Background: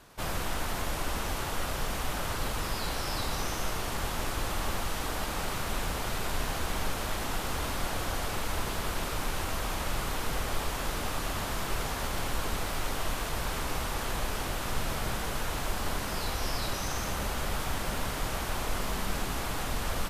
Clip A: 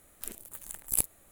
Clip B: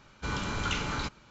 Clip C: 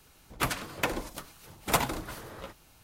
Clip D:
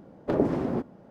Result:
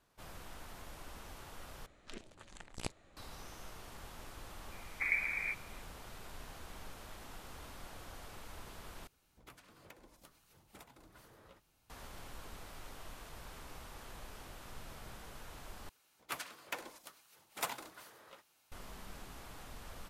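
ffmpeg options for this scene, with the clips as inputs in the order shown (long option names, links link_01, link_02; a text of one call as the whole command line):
ffmpeg -i bed.wav -i cue0.wav -i cue1.wav -i cue2.wav -i cue3.wav -filter_complex "[3:a]asplit=2[link_01][link_02];[0:a]volume=-18dB[link_03];[1:a]lowpass=frequency=5300:width=0.5412,lowpass=frequency=5300:width=1.3066[link_04];[4:a]lowpass=frequency=2200:width_type=q:width=0.5098,lowpass=frequency=2200:width_type=q:width=0.6013,lowpass=frequency=2200:width_type=q:width=0.9,lowpass=frequency=2200:width_type=q:width=2.563,afreqshift=-2600[link_05];[link_01]acompressor=threshold=-39dB:ratio=16:attack=20:release=216:knee=6:detection=rms[link_06];[link_02]highpass=frequency=760:poles=1[link_07];[link_03]asplit=4[link_08][link_09][link_10][link_11];[link_08]atrim=end=1.864[link_12];[link_04]atrim=end=1.31,asetpts=PTS-STARTPTS,volume=-0.5dB[link_13];[link_09]atrim=start=3.166:end=9.074[link_14];[link_06]atrim=end=2.83,asetpts=PTS-STARTPTS,volume=-15dB[link_15];[link_10]atrim=start=11.896:end=15.894[link_16];[link_07]atrim=end=2.83,asetpts=PTS-STARTPTS,volume=-10.5dB[link_17];[link_11]atrim=start=18.716[link_18];[link_05]atrim=end=1.1,asetpts=PTS-STARTPTS,volume=-10dB,afade=type=in:duration=0.004:curve=hsin,afade=type=out:start_time=1.096:duration=0.004:curve=hsin,adelay=4720[link_19];[link_12][link_13]acrossfade=duration=0.004:curve1=hsin:curve2=hsin[link_20];[link_20][link_14]acrossfade=duration=0.004:curve1=hsin:curve2=hsin[link_21];[link_21][link_15]acrossfade=duration=0.004:curve1=hsin:curve2=hsin[link_22];[link_22][link_16]acrossfade=duration=0.004:curve1=hsin:curve2=hsin[link_23];[link_23][link_17]acrossfade=duration=0.004:curve1=hsin:curve2=hsin[link_24];[link_24][link_18]acrossfade=duration=0.004:curve1=hsin:curve2=hsin[link_25];[link_25][link_19]amix=inputs=2:normalize=0" out.wav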